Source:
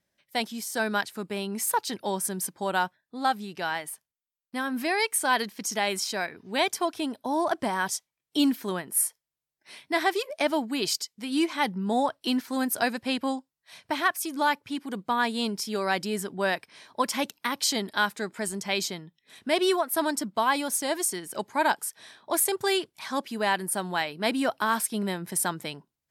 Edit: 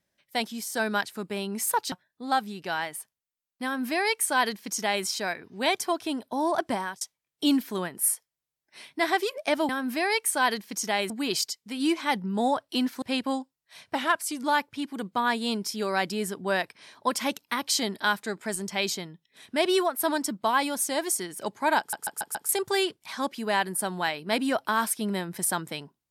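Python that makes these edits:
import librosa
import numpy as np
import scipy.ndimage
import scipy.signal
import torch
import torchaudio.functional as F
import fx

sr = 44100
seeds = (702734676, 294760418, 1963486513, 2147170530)

y = fx.edit(x, sr, fx.cut(start_s=1.92, length_s=0.93),
    fx.duplicate(start_s=4.57, length_s=1.41, to_s=10.62),
    fx.fade_out_span(start_s=7.67, length_s=0.27),
    fx.cut(start_s=12.54, length_s=0.45),
    fx.speed_span(start_s=13.92, length_s=0.45, speed=0.92),
    fx.stutter_over(start_s=21.72, slice_s=0.14, count=5), tone=tone)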